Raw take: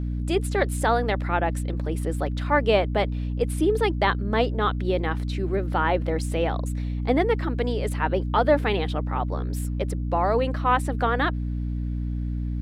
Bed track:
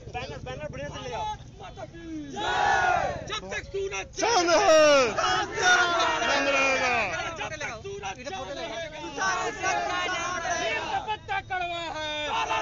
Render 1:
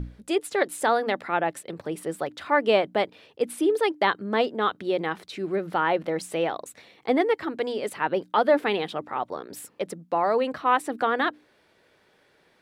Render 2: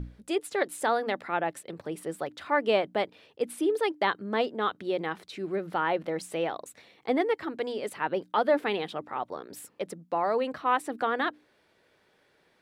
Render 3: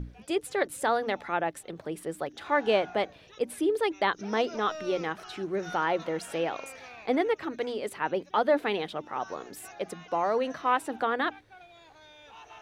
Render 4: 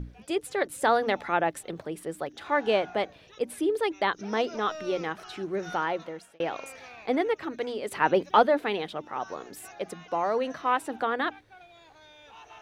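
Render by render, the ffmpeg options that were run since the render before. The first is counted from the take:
-af "bandreject=f=60:t=h:w=6,bandreject=f=120:t=h:w=6,bandreject=f=180:t=h:w=6,bandreject=f=240:t=h:w=6,bandreject=f=300:t=h:w=6"
-af "volume=-4dB"
-filter_complex "[1:a]volume=-22dB[a];[0:a][a]amix=inputs=2:normalize=0"
-filter_complex "[0:a]asplit=3[a][b][c];[a]afade=t=out:st=7.91:d=0.02[d];[b]acontrast=77,afade=t=in:st=7.91:d=0.02,afade=t=out:st=8.45:d=0.02[e];[c]afade=t=in:st=8.45:d=0.02[f];[d][e][f]amix=inputs=3:normalize=0,asplit=4[g][h][i][j];[g]atrim=end=0.832[k];[h]atrim=start=0.828:end=1.832,asetpts=PTS-STARTPTS,volume=3.5dB[l];[i]atrim=start=1.828:end=6.4,asetpts=PTS-STARTPTS,afade=t=out:st=3.942:d=0.63[m];[j]atrim=start=6.4,asetpts=PTS-STARTPTS,afade=t=in:d=0.004:c=hsin[n];[k][l]acrossfade=d=0.004:c1=hsin:c2=hsin[o];[m][n]concat=n=2:v=0:a=1[p];[o][p]acrossfade=d=0.004:c1=hsin:c2=hsin"

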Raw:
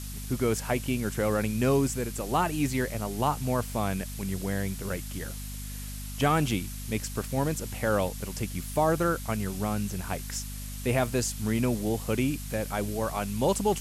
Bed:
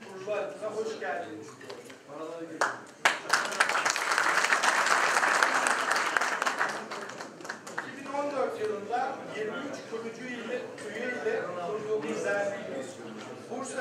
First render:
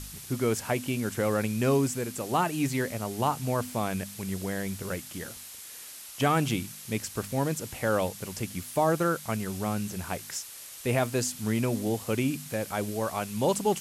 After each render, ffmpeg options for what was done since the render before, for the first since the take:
-af "bandreject=f=50:t=h:w=4,bandreject=f=100:t=h:w=4,bandreject=f=150:t=h:w=4,bandreject=f=200:t=h:w=4,bandreject=f=250:t=h:w=4"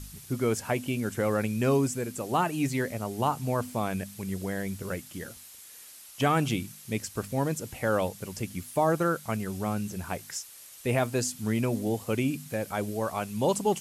-af "afftdn=nr=6:nf=-44"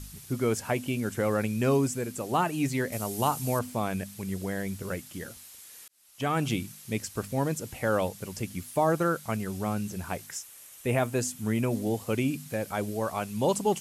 -filter_complex "[0:a]asettb=1/sr,asplit=3[a][b][c];[a]atrim=end=2.924[d];[b]atrim=start=2.92:end=3.59,asetpts=PTS-STARTPTS,afade=t=in:d=0.004:c=qsin,afade=t=out:st=0.666:d=0.004:c=qsin,highshelf=f=4.7k:g=11.5[e];[c]atrim=start=3.586[f];[d][e]acrossfade=d=0.004:c1=hsin:c2=qsin[g];[g][f]acrossfade=d=0.004:c1=qsin:c2=hsin,asettb=1/sr,asplit=3[h][i][j];[h]atrim=end=10.264[k];[i]atrim=start=10.26:end=11.71,asetpts=PTS-STARTPTS,afade=t=in:d=0.004:c=qsin,afade=t=out:st=1.446:d=0.004:c=qsin,equalizer=f=4.6k:w=2.1:g=-5.5[l];[j]atrim=start=11.706[m];[k][l]acrossfade=d=0.004:c1=hsin:c2=qsin[n];[n][m]acrossfade=d=0.004:c1=qsin:c2=hsin,asplit=2[o][p];[o]atrim=end=5.88,asetpts=PTS-STARTPTS,afade=t=out:st=5.876:d=0.004:c=hsin[q];[p]atrim=start=5.88,asetpts=PTS-STARTPTS,afade=t=in:d=0.65[r];[q][r]concat=n=2:v=0:a=1"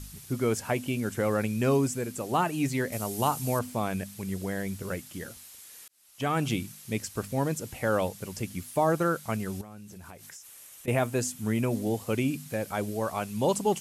-filter_complex "[0:a]asettb=1/sr,asplit=3[a][b][c];[a]atrim=end=9.614[d];[b]atrim=start=9.61:end=10.88,asetpts=PTS-STARTPTS,afade=t=in:d=0.004:c=qsin,afade=t=out:st=1.266:d=0.004:c=qsin,acompressor=threshold=-42dB:ratio=10:attack=3.2:release=140:knee=1:detection=peak[e];[c]atrim=start=10.876[f];[d][e]acrossfade=d=0.004:c1=hsin:c2=qsin[g];[g][f]acrossfade=d=0.004:c1=qsin:c2=hsin"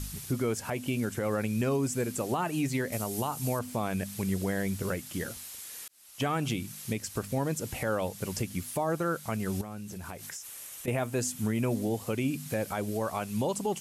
-filter_complex "[0:a]asplit=2[a][b];[b]acompressor=threshold=-34dB:ratio=6,volume=-1.5dB[c];[a][c]amix=inputs=2:normalize=0,alimiter=limit=-20.5dB:level=0:latency=1:release=275"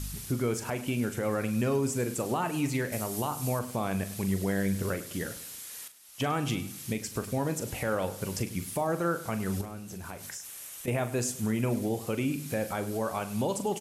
-filter_complex "[0:a]asplit=2[a][b];[b]adelay=41,volume=-11dB[c];[a][c]amix=inputs=2:normalize=0,aecho=1:1:102|204|306|408:0.158|0.0729|0.0335|0.0154"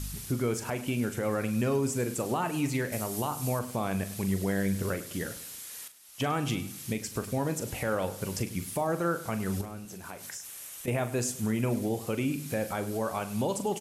-filter_complex "[0:a]asettb=1/sr,asplit=3[a][b][c];[a]atrim=end=9.854[d];[b]atrim=start=9.85:end=10.34,asetpts=PTS-STARTPTS,afade=t=in:d=0.004:c=qsin,afade=t=out:st=0.486:d=0.004:c=qsin,highpass=f=200:p=1[e];[c]atrim=start=10.336[f];[d][e]acrossfade=d=0.004:c1=hsin:c2=qsin[g];[g][f]acrossfade=d=0.004:c1=qsin:c2=hsin"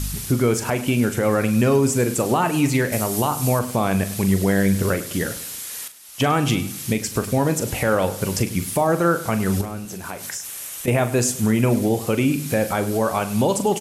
-af "volume=10.5dB"

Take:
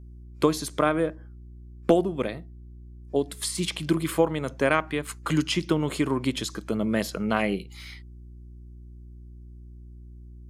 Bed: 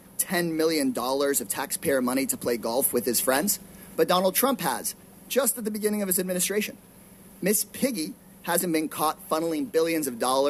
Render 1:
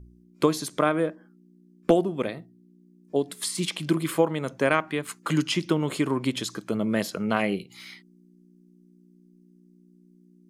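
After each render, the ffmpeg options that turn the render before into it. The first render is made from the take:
-af "bandreject=f=60:t=h:w=4,bandreject=f=120:t=h:w=4"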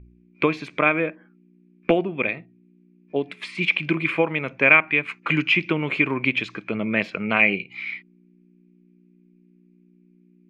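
-af "lowpass=f=2.4k:t=q:w=11"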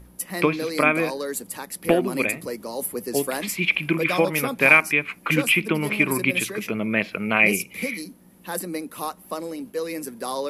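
-filter_complex "[1:a]volume=-5dB[a];[0:a][a]amix=inputs=2:normalize=0"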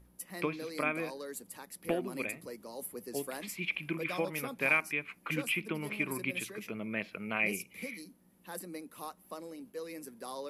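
-af "volume=-13.5dB"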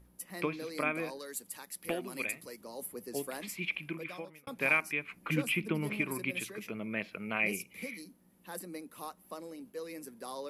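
-filter_complex "[0:a]asettb=1/sr,asplit=3[a][b][c];[a]atrim=end=1.194[d];[b]atrim=start=1.19:end=2.61,asetpts=PTS-STARTPTS,afade=t=in:d=0.004:c=qsin,afade=t=out:st=1.416:d=0.004:c=qsin,tiltshelf=f=1.3k:g=-4.5[e];[c]atrim=start=2.606[f];[d][e]acrossfade=d=0.004:c1=hsin:c2=qsin[g];[g][f]acrossfade=d=0.004:c1=qsin:c2=hsin,asettb=1/sr,asplit=3[h][i][j];[h]atrim=end=5.124[k];[i]atrim=start=5.12:end=6.01,asetpts=PTS-STARTPTS,afade=t=in:d=0.004:c=qsin,afade=t=out:st=0.886:d=0.004:c=qsin,lowshelf=f=320:g=7.5[l];[j]atrim=start=6.006[m];[k][l]acrossfade=d=0.004:c1=hsin:c2=qsin[n];[n][m]acrossfade=d=0.004:c1=qsin:c2=hsin,asplit=2[o][p];[o]atrim=end=4.47,asetpts=PTS-STARTPTS,afade=t=out:st=3.65:d=0.82[q];[p]atrim=start=4.47,asetpts=PTS-STARTPTS,afade=t=in:d=0.004:c=hsin[r];[q][r]concat=n=2:v=0:a=1"

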